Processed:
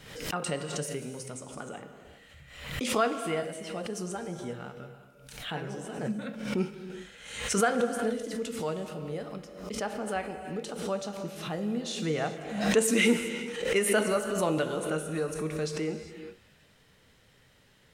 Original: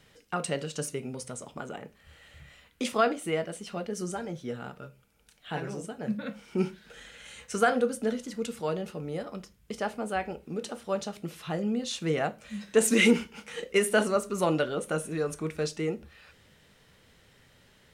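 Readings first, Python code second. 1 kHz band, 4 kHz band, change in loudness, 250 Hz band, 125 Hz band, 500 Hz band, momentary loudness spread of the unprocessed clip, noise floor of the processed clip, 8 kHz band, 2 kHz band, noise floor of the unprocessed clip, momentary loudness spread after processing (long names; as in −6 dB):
−1.5 dB, +0.5 dB, −1.0 dB, −1.0 dB, 0.0 dB, −1.0 dB, 16 LU, −61 dBFS, +1.0 dB, −1.0 dB, −62 dBFS, 16 LU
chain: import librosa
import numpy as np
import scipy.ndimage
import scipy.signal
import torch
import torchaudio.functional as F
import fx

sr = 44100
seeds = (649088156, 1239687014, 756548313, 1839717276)

y = fx.rev_gated(x, sr, seeds[0], gate_ms=430, shape='flat', drr_db=8.0)
y = fx.pre_swell(y, sr, db_per_s=66.0)
y = y * 10.0 ** (-2.5 / 20.0)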